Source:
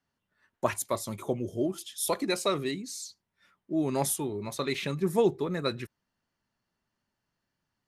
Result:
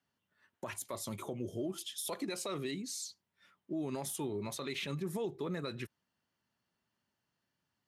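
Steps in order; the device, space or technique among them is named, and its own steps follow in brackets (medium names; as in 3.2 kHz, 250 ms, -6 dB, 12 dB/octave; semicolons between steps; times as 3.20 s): broadcast voice chain (high-pass 79 Hz; de-esser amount 50%; compression 3:1, threshold -30 dBFS, peak gain reduction 8.5 dB; peaking EQ 3.1 kHz +3.5 dB 0.46 oct; peak limiter -27 dBFS, peak gain reduction 10 dB); trim -2 dB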